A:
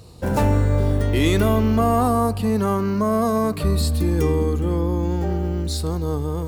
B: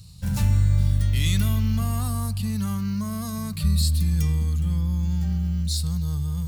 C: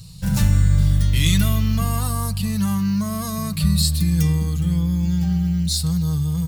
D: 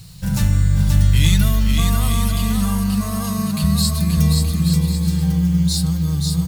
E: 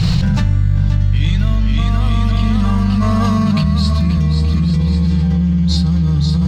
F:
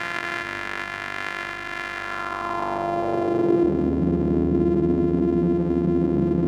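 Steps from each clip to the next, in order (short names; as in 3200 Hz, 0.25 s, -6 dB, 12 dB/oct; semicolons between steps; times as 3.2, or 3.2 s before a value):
EQ curve 180 Hz 0 dB, 350 Hz -28 dB, 4200 Hz +1 dB
comb 6.2 ms, depth 51%; gain +5.5 dB
bit-crush 8-bit; bouncing-ball echo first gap 0.53 s, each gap 0.65×, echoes 5
air absorption 190 m; on a send at -15 dB: reverb, pre-delay 3 ms; on the sum: fast leveller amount 100%; gain -3.5 dB
sample sorter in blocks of 128 samples; band-pass sweep 1800 Hz -> 260 Hz, 1.96–3.91; analogue delay 0.208 s, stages 1024, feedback 83%, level -8 dB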